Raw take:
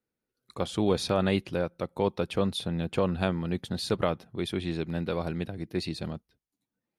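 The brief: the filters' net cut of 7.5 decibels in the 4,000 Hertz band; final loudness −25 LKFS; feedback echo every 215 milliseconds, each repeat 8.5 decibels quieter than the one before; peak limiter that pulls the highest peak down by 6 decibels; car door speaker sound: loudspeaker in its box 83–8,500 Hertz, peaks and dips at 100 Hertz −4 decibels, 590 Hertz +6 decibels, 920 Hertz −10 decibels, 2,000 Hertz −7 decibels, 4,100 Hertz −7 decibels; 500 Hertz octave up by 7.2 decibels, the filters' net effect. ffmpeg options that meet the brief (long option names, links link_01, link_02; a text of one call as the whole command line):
ffmpeg -i in.wav -af "equalizer=frequency=500:width_type=o:gain=6,equalizer=frequency=4000:width_type=o:gain=-5,alimiter=limit=-15.5dB:level=0:latency=1,highpass=83,equalizer=frequency=100:width_type=q:width=4:gain=-4,equalizer=frequency=590:width_type=q:width=4:gain=6,equalizer=frequency=920:width_type=q:width=4:gain=-10,equalizer=frequency=2000:width_type=q:width=4:gain=-7,equalizer=frequency=4100:width_type=q:width=4:gain=-7,lowpass=frequency=8500:width=0.5412,lowpass=frequency=8500:width=1.3066,aecho=1:1:215|430|645|860:0.376|0.143|0.0543|0.0206,volume=3dB" out.wav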